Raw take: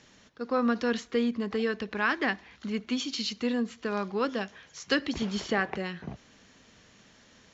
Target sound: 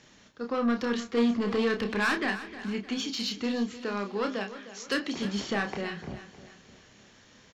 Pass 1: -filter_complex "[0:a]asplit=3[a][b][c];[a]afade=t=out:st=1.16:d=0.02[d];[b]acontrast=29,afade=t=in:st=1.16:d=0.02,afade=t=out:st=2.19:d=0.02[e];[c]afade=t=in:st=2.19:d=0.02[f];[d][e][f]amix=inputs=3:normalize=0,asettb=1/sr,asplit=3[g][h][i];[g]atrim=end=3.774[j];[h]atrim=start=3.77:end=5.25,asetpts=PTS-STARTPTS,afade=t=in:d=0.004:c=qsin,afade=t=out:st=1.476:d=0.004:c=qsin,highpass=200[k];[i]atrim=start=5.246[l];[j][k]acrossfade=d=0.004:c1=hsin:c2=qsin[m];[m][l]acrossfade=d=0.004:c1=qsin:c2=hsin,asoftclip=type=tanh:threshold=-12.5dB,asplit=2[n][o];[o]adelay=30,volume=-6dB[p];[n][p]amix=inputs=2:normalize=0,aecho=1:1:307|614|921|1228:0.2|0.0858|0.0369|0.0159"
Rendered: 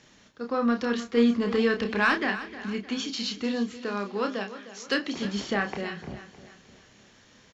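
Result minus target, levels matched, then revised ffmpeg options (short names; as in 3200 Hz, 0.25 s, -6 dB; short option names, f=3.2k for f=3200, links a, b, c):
soft clip: distortion -12 dB
-filter_complex "[0:a]asplit=3[a][b][c];[a]afade=t=out:st=1.16:d=0.02[d];[b]acontrast=29,afade=t=in:st=1.16:d=0.02,afade=t=out:st=2.19:d=0.02[e];[c]afade=t=in:st=2.19:d=0.02[f];[d][e][f]amix=inputs=3:normalize=0,asettb=1/sr,asplit=3[g][h][i];[g]atrim=end=3.774[j];[h]atrim=start=3.77:end=5.25,asetpts=PTS-STARTPTS,afade=t=in:d=0.004:c=qsin,afade=t=out:st=1.476:d=0.004:c=qsin,highpass=200[k];[i]atrim=start=5.246[l];[j][k]acrossfade=d=0.004:c1=hsin:c2=qsin[m];[m][l]acrossfade=d=0.004:c1=qsin:c2=hsin,asoftclip=type=tanh:threshold=-22dB,asplit=2[n][o];[o]adelay=30,volume=-6dB[p];[n][p]amix=inputs=2:normalize=0,aecho=1:1:307|614|921|1228:0.2|0.0858|0.0369|0.0159"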